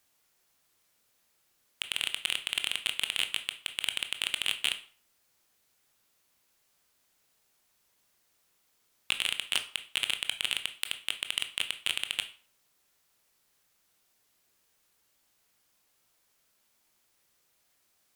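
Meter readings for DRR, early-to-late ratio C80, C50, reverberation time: 7.5 dB, 18.0 dB, 13.0 dB, 0.40 s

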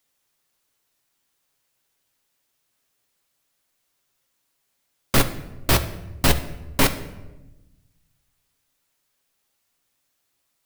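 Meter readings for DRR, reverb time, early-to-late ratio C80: 7.0 dB, 1.1 s, 15.0 dB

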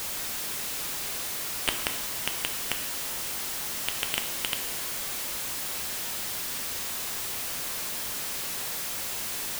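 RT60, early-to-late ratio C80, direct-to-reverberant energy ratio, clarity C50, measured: 0.95 s, 11.5 dB, 6.0 dB, 9.5 dB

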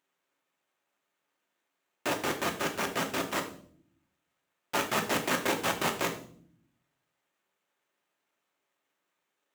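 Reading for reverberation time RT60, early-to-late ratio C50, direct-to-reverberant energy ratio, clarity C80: 0.55 s, 10.5 dB, 3.0 dB, 14.0 dB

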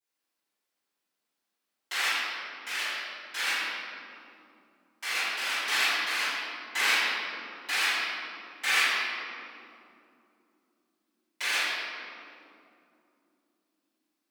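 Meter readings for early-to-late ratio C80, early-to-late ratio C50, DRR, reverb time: -1.5 dB, -4.5 dB, -19.5 dB, 3.0 s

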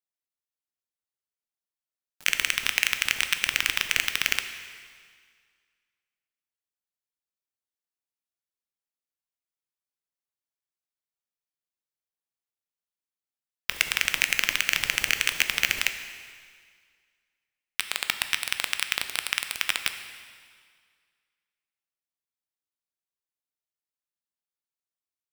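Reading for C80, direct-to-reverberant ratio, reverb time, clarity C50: 10.5 dB, 8.0 dB, 1.9 s, 9.5 dB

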